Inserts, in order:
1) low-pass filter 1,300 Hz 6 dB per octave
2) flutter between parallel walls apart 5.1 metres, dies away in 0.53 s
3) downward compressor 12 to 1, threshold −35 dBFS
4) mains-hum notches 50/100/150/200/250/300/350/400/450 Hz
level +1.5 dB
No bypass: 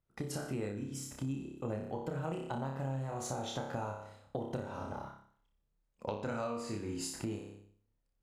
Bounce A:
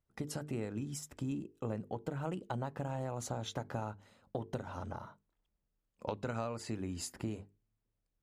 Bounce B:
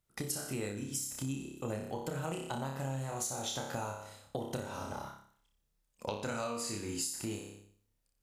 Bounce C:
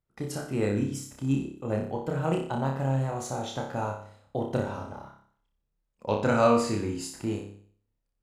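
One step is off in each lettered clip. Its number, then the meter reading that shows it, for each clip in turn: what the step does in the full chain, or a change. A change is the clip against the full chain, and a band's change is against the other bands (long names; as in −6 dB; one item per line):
2, change in crest factor +1.5 dB
1, 8 kHz band +8.0 dB
3, average gain reduction 7.0 dB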